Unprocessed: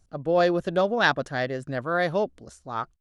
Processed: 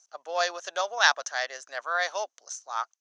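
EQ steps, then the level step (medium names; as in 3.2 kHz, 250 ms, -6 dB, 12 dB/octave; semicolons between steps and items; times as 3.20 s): high-pass 730 Hz 24 dB/octave; resonant low-pass 6.2 kHz, resonance Q 9.9; 0.0 dB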